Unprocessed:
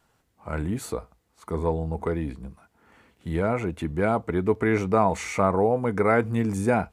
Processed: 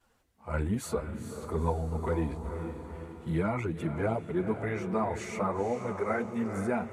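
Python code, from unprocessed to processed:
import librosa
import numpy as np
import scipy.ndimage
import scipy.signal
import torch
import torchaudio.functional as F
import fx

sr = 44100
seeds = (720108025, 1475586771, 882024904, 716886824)

y = fx.chorus_voices(x, sr, voices=4, hz=0.94, base_ms=11, depth_ms=3.0, mix_pct=70)
y = fx.echo_diffused(y, sr, ms=470, feedback_pct=51, wet_db=-8)
y = fx.rider(y, sr, range_db=5, speed_s=0.5)
y = y * librosa.db_to_amplitude(-5.0)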